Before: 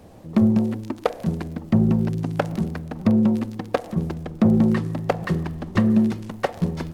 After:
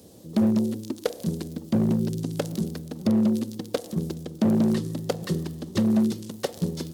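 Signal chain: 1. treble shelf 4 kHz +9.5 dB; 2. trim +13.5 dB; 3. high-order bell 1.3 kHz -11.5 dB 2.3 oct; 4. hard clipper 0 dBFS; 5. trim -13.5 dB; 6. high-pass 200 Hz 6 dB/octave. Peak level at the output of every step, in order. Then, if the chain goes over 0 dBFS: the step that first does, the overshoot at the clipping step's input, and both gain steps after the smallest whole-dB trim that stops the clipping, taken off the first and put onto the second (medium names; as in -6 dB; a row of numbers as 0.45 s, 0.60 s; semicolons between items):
-4.5 dBFS, +9.0 dBFS, +6.5 dBFS, 0.0 dBFS, -13.5 dBFS, -11.5 dBFS; step 2, 6.5 dB; step 2 +6.5 dB, step 5 -6.5 dB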